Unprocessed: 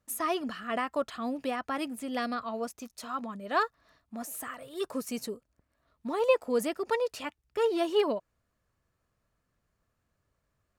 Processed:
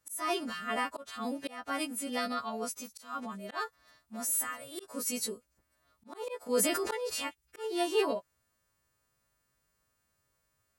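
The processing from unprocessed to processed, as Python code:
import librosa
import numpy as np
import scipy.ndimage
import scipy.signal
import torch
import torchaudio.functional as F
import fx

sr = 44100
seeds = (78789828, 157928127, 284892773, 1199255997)

y = fx.freq_snap(x, sr, grid_st=2)
y = fx.auto_swell(y, sr, attack_ms=246.0)
y = fx.sustainer(y, sr, db_per_s=28.0, at=(6.46, 7.25), fade=0.02)
y = F.gain(torch.from_numpy(y), -1.5).numpy()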